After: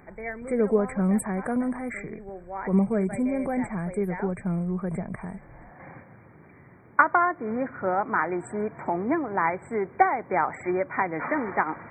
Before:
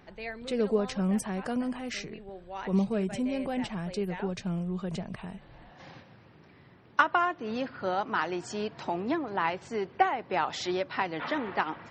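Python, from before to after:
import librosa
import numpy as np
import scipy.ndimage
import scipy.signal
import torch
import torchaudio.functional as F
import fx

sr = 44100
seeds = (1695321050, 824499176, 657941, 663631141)

y = fx.brickwall_bandstop(x, sr, low_hz=2400.0, high_hz=7600.0)
y = y * 10.0 ** (4.5 / 20.0)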